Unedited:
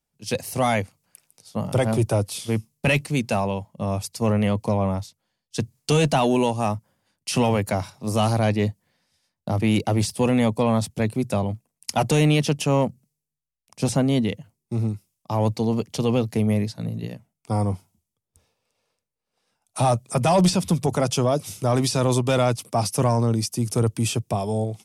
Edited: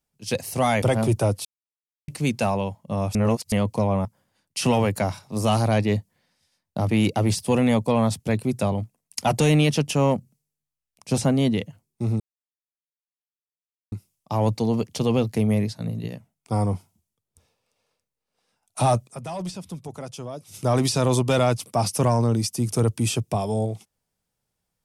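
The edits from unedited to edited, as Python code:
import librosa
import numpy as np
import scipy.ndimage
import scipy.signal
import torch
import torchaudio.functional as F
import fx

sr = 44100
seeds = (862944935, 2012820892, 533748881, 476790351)

y = fx.edit(x, sr, fx.cut(start_s=0.82, length_s=0.9),
    fx.silence(start_s=2.35, length_s=0.63),
    fx.reverse_span(start_s=4.05, length_s=0.37),
    fx.cut(start_s=4.95, length_s=1.81),
    fx.insert_silence(at_s=14.91, length_s=1.72),
    fx.fade_down_up(start_s=20.06, length_s=1.48, db=-14.0, fade_s=0.14, curve='exp'), tone=tone)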